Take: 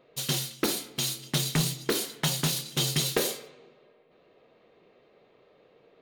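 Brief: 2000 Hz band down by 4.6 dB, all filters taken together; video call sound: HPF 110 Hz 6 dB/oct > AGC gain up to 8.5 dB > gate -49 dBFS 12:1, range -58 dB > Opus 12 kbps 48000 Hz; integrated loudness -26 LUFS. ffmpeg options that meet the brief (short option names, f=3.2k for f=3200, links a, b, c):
-af "highpass=f=110:p=1,equalizer=f=2k:t=o:g=-6,dynaudnorm=m=8.5dB,agate=range=-58dB:threshold=-49dB:ratio=12,volume=5dB" -ar 48000 -c:a libopus -b:a 12k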